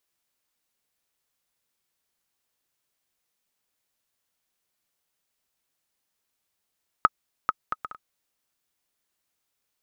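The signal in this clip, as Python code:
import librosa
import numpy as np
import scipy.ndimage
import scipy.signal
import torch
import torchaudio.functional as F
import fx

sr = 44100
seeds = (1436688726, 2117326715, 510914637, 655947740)

y = fx.bouncing_ball(sr, first_gap_s=0.44, ratio=0.53, hz=1270.0, decay_ms=34.0, level_db=-4.0)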